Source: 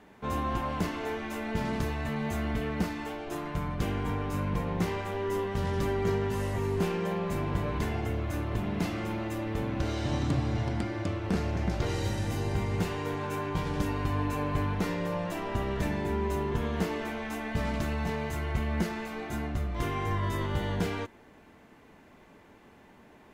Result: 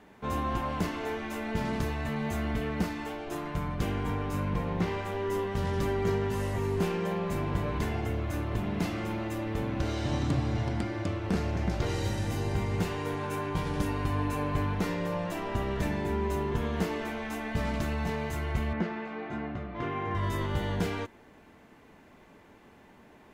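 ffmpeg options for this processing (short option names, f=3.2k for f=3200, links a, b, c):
-filter_complex "[0:a]asettb=1/sr,asplit=3[a][b][c];[a]atrim=end=4.544[d];[b]atrim=start=4.54:end=5.04,asetpts=PTS-STARTPTS,afade=t=in:d=0.004:c=qsin,afade=t=out:st=0.496:d=0.004:c=qsin,acrossover=split=5200[e][f];[f]acompressor=threshold=-60dB:ratio=4:attack=1:release=60[g];[e][g]amix=inputs=2:normalize=0[h];[c]atrim=start=5.036[i];[d][h]acrossfade=d=0.004:c1=hsin:c2=qsin[j];[j][i]acrossfade=d=0.004:c1=qsin:c2=hsin,asettb=1/sr,asplit=3[k][l][m];[k]atrim=end=13.004[n];[l]atrim=start=13:end=14.5,asetpts=PTS-STARTPTS,afade=t=in:d=0.004:c=qsin,afade=t=out:st=1.496:d=0.004:c=qsin,equalizer=f=9.7k:w=6.5:g=6.5[o];[m]atrim=start=14.496[p];[n][o]acrossfade=d=0.004:c1=hsin:c2=qsin[q];[q][p]acrossfade=d=0.004:c1=qsin:c2=hsin,asettb=1/sr,asplit=3[r][s][t];[r]atrim=end=18.734[u];[s]atrim=start=18.73:end=20.15,asetpts=PTS-STARTPTS,afade=t=in:d=0.004:c=qsin,afade=t=out:st=1.416:d=0.004:c=qsin,highpass=130,lowpass=2.5k[v];[t]atrim=start=20.146[w];[u][v]acrossfade=d=0.004:c1=hsin:c2=qsin[x];[x][w]acrossfade=d=0.004:c1=qsin:c2=hsin"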